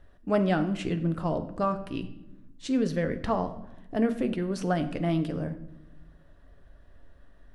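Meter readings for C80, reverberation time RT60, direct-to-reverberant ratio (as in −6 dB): 15.5 dB, 0.95 s, 7.5 dB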